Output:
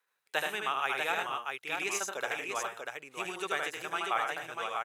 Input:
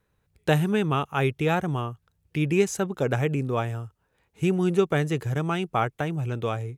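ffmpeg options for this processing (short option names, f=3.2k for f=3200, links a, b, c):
-af "highpass=1k,atempo=1.4,aecho=1:1:76|106|641:0.668|0.398|0.596,volume=-2dB"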